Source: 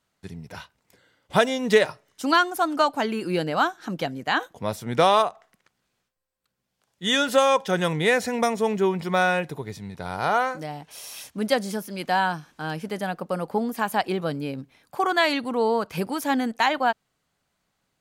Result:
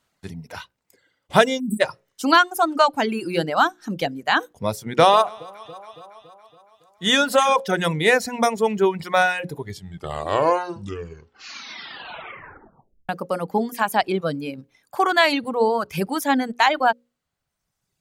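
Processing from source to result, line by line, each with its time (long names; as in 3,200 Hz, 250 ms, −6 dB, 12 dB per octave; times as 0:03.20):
0:01.60–0:01.80: time-frequency box erased 390–7,700 Hz
0:04.95–0:07.60: delay that swaps between a low-pass and a high-pass 140 ms, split 1,100 Hz, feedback 75%, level −11.5 dB
0:09.53: tape stop 3.56 s
whole clip: mains-hum notches 60/120/180/240/300/360/420/480/540 Hz; reverb reduction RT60 1.4 s; level +4.5 dB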